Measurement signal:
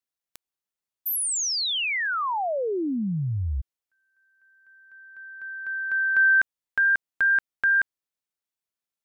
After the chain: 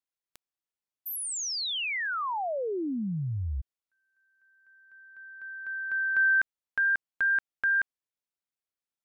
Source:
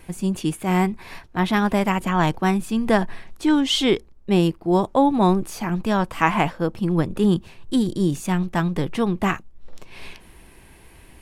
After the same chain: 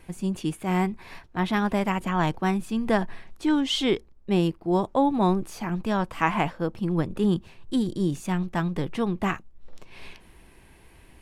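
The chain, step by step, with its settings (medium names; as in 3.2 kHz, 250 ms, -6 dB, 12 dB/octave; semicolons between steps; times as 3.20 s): treble shelf 7.6 kHz -5 dB; trim -4.5 dB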